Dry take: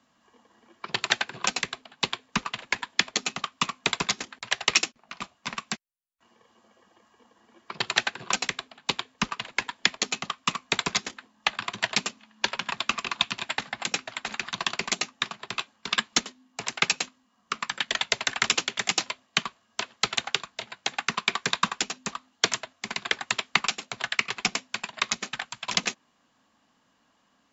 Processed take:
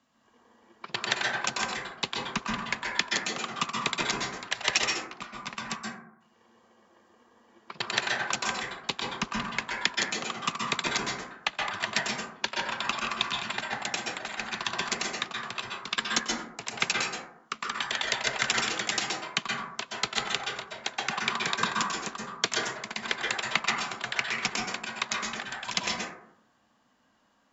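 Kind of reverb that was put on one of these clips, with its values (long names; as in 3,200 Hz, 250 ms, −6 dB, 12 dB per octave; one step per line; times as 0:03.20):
dense smooth reverb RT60 0.74 s, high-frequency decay 0.3×, pre-delay 115 ms, DRR −2 dB
level −4.5 dB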